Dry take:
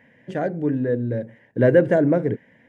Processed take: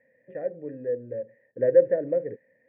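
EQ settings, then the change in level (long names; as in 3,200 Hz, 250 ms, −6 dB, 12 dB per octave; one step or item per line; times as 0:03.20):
formant resonators in series e
high-shelf EQ 2,700 Hz −6.5 dB
0.0 dB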